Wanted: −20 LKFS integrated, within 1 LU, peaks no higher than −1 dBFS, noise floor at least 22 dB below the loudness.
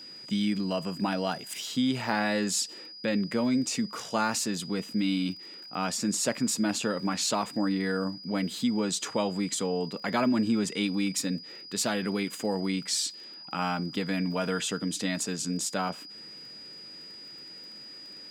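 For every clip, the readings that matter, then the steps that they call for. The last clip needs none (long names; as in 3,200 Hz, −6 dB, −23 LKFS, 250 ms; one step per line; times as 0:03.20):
crackle rate 26 per second; interfering tone 4,900 Hz; level of the tone −43 dBFS; integrated loudness −29.5 LKFS; sample peak −12.0 dBFS; target loudness −20.0 LKFS
→ click removal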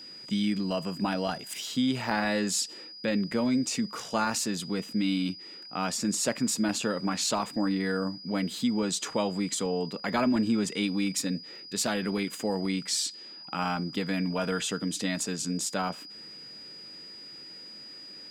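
crackle rate 0.82 per second; interfering tone 4,900 Hz; level of the tone −43 dBFS
→ notch filter 4,900 Hz, Q 30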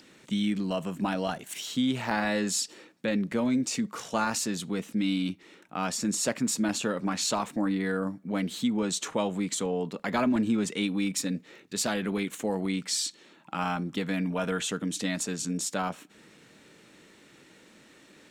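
interfering tone none found; integrated loudness −29.5 LKFS; sample peak −12.5 dBFS; target loudness −20.0 LKFS
→ level +9.5 dB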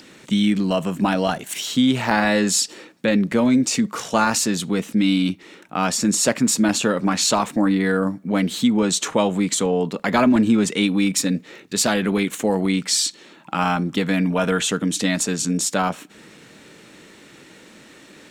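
integrated loudness −20.0 LKFS; sample peak −3.0 dBFS; background noise floor −47 dBFS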